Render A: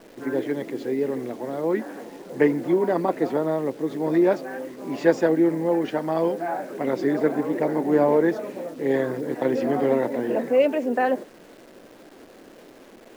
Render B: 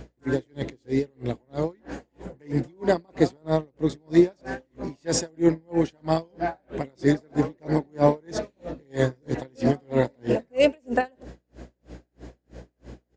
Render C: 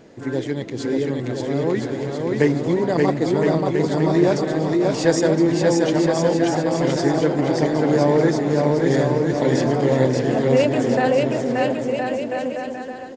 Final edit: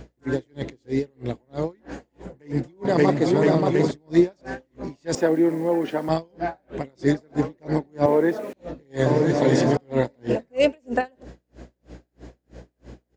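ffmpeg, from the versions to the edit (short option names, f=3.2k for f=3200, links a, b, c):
-filter_complex "[2:a]asplit=2[a][b];[0:a]asplit=2[c][d];[1:a]asplit=5[e][f][g][h][i];[e]atrim=end=2.852[j];[a]atrim=start=2.848:end=3.912[k];[f]atrim=start=3.908:end=5.152[l];[c]atrim=start=5.148:end=6.092[m];[g]atrim=start=6.088:end=8.062[n];[d]atrim=start=8.058:end=8.532[o];[h]atrim=start=8.528:end=9.062[p];[b]atrim=start=9.058:end=9.772[q];[i]atrim=start=9.768[r];[j][k]acrossfade=d=0.004:c1=hsin:c2=hsin[s];[s][l]acrossfade=d=0.004:c1=hsin:c2=hsin[t];[t][m]acrossfade=d=0.004:c1=hsin:c2=hsin[u];[u][n]acrossfade=d=0.004:c1=hsin:c2=hsin[v];[v][o]acrossfade=d=0.004:c1=hsin:c2=hsin[w];[w][p]acrossfade=d=0.004:c1=hsin:c2=hsin[x];[x][q]acrossfade=d=0.004:c1=hsin:c2=hsin[y];[y][r]acrossfade=d=0.004:c1=hsin:c2=hsin"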